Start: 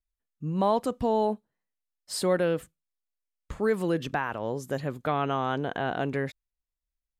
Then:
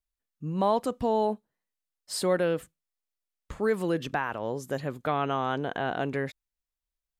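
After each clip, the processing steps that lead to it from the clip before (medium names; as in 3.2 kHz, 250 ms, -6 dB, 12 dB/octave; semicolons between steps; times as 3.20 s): bass shelf 210 Hz -3 dB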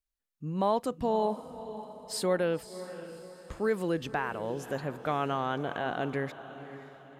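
echo that smears into a reverb 569 ms, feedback 43%, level -13 dB; trim -2.5 dB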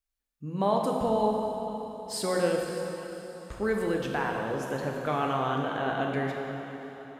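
plate-style reverb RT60 2.7 s, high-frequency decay 0.85×, DRR 0 dB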